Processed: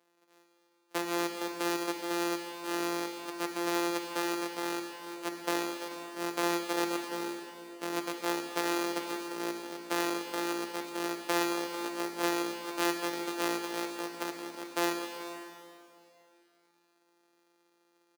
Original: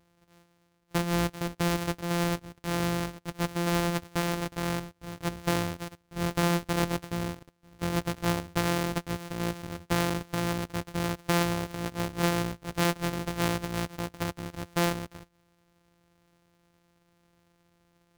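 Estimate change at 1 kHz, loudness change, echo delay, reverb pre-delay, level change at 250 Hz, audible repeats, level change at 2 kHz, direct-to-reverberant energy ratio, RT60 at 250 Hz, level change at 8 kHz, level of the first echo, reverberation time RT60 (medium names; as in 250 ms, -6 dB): -1.5 dB, -3.5 dB, 432 ms, 7 ms, -4.0 dB, 1, -2.0 dB, 3.5 dB, 2.7 s, -1.5 dB, -17.0 dB, 2.8 s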